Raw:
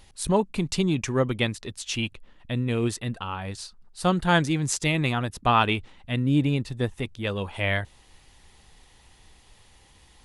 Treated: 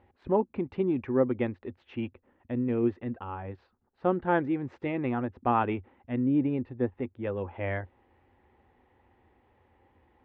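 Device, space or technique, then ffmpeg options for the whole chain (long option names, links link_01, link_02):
bass cabinet: -af "highpass=70,equalizer=frequency=88:width_type=q:width=4:gain=7,equalizer=frequency=160:width_type=q:width=4:gain=-6,equalizer=frequency=250:width_type=q:width=4:gain=9,equalizer=frequency=360:width_type=q:width=4:gain=9,equalizer=frequency=520:width_type=q:width=4:gain=7,equalizer=frequency=820:width_type=q:width=4:gain=6,lowpass=frequency=2100:width=0.5412,lowpass=frequency=2100:width=1.3066,volume=-8.5dB"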